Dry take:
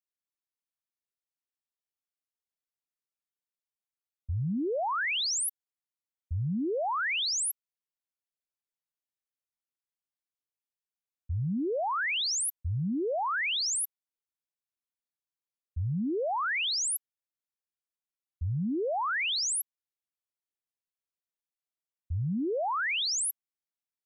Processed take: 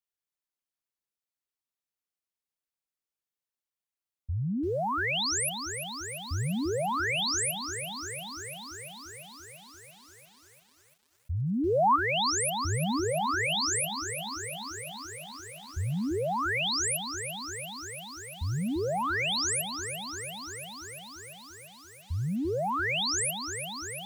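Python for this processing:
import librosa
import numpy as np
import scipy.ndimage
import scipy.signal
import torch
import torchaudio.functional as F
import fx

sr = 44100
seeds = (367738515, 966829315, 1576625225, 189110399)

y = fx.peak_eq(x, sr, hz=1400.0, db=9.5, octaves=3.0, at=(11.35, 11.96))
y = fx.echo_crushed(y, sr, ms=343, feedback_pct=80, bits=9, wet_db=-8.5)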